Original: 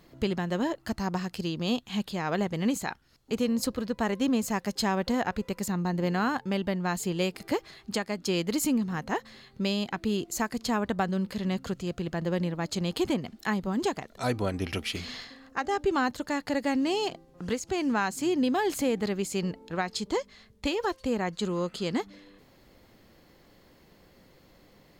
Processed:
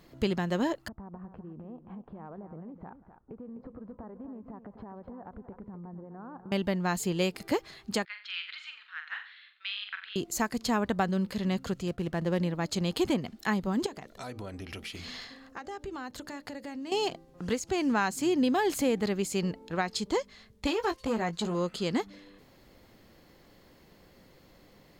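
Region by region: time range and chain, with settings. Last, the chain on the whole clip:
0.88–6.52 LPF 1200 Hz 24 dB/oct + compressor 16:1, threshold -40 dBFS + tapped delay 0.176/0.254 s -19.5/-10.5 dB
8.05–10.16 elliptic band-pass 1400–3700 Hz, stop band 80 dB + flutter echo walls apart 7.6 m, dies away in 0.39 s + Doppler distortion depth 0.13 ms
11.88–12.38 median filter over 9 samples + expander -44 dBFS
13.86–16.92 compressor 5:1, threshold -37 dBFS + notches 60/120/180/240/300/360/420/480/540/600 Hz
20.67–21.55 doubler 18 ms -8 dB + core saturation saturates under 750 Hz
whole clip: dry

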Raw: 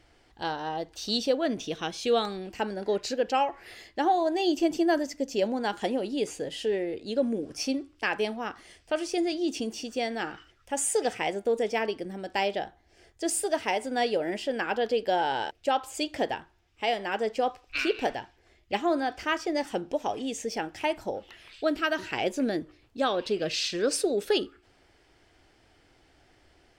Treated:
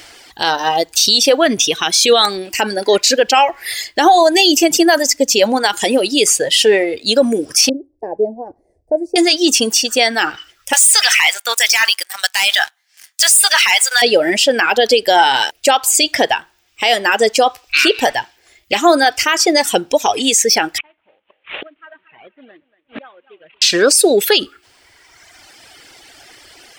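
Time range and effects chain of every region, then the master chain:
7.69–9.16 inverse Chebyshev low-pass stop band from 1200 Hz + bell 190 Hz -6.5 dB 2.1 oct
10.73–14.02 HPF 1100 Hz 24 dB/oct + sample leveller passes 3
20.78–23.62 CVSD 16 kbps + thinning echo 0.233 s, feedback 28%, high-pass 280 Hz, level -10 dB + flipped gate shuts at -34 dBFS, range -31 dB
whole clip: reverb removal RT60 1.5 s; tilt +3.5 dB/oct; maximiser +22 dB; gain -1 dB

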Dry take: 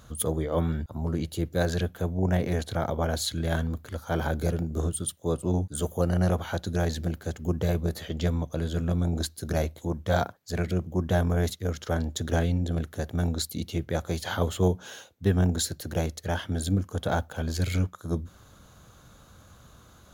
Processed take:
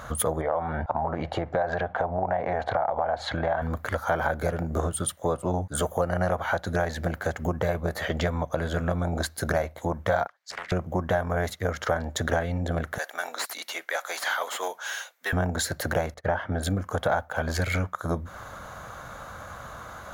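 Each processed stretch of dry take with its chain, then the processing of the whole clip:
0.41–3.62 LPF 3200 Hz + bell 780 Hz +14 dB 0.89 oct + compressor, threshold -28 dBFS
10.27–10.72 compressor 3:1, threshold -31 dBFS + band-pass 4300 Hz, Q 0.95 + Doppler distortion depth 0.63 ms
12.98–15.33 differentiator + overdrive pedal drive 22 dB, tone 3200 Hz, clips at -20 dBFS + ladder high-pass 200 Hz, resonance 25%
16.14–16.63 LPF 1400 Hz 6 dB/oct + gate -51 dBFS, range -18 dB
whole clip: band shelf 1100 Hz +12 dB 2.4 oct; notch 2500 Hz, Q 27; compressor 4:1, threshold -31 dBFS; gain +6.5 dB

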